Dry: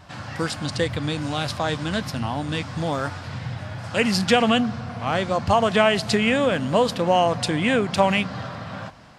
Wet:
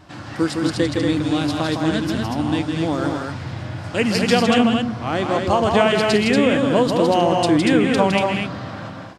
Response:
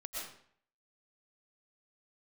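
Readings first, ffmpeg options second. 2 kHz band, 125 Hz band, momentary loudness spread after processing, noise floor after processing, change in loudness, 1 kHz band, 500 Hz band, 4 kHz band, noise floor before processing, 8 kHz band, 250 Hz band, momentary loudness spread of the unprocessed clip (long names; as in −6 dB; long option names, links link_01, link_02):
+1.5 dB, +2.5 dB, 11 LU, −34 dBFS, +3.5 dB, +1.5 dB, +3.5 dB, +1.5 dB, −37 dBFS, +1.5 dB, +6.5 dB, 13 LU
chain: -filter_complex "[0:a]equalizer=frequency=320:width=2.8:gain=12,asplit=2[link_01][link_02];[link_02]aecho=0:1:160.3|236.2:0.562|0.631[link_03];[link_01][link_03]amix=inputs=2:normalize=0,volume=-1dB"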